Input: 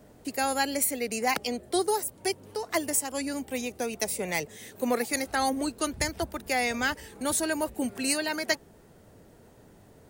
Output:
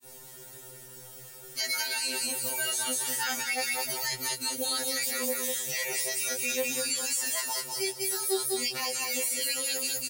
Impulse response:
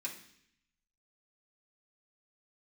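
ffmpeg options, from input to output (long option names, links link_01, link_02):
-filter_complex "[0:a]areverse,acompressor=threshold=-29dB:ratio=6,aecho=1:1:5.6:0.68,flanger=delay=19.5:depth=4.4:speed=0.55,aecho=1:1:199|398|597:0.473|0.118|0.0296,acrossover=split=5500[link_01][link_02];[link_02]acompressor=threshold=-49dB:ratio=4:attack=1:release=60[link_03];[link_01][link_03]amix=inputs=2:normalize=0,crystalizer=i=9:c=0,alimiter=limit=-21dB:level=0:latency=1:release=15,afftfilt=real='re*2.45*eq(mod(b,6),0)':imag='im*2.45*eq(mod(b,6),0)':win_size=2048:overlap=0.75,volume=2.5dB"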